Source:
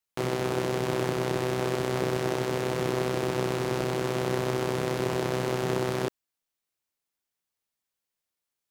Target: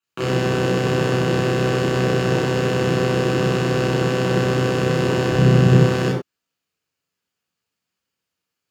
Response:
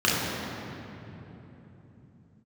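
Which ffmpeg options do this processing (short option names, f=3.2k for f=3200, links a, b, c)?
-filter_complex "[0:a]asettb=1/sr,asplit=3[a][b][c];[a]atrim=end=5.304[d];[b]atrim=start=5.3:end=5.75,asetpts=PTS-STARTPTS,afade=t=in:d=0.004:c=qsin,afade=t=out:st=0.446:d=0.004:c=qsin,bass=f=250:g=10,treble=f=4k:g=-1[e];[c]atrim=start=5.746[f];[d][e]acrossfade=d=0.004:c1=hsin:c2=qsin[g];[g][f]acrossfade=d=0.004:c1=qsin:c2=hsin[h];[1:a]atrim=start_sample=2205,afade=t=out:st=0.18:d=0.01,atrim=end_sample=8379[i];[h][i]afir=irnorm=-1:irlink=0,volume=-7dB"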